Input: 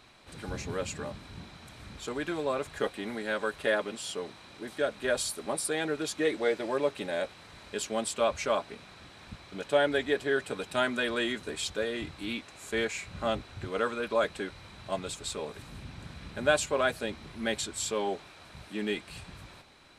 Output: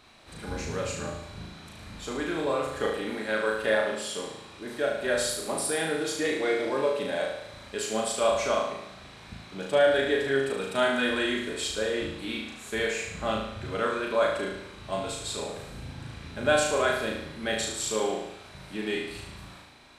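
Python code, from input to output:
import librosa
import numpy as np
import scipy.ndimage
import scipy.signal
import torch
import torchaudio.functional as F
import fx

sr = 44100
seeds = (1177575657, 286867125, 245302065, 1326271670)

y = x + fx.room_flutter(x, sr, wall_m=6.3, rt60_s=0.8, dry=0)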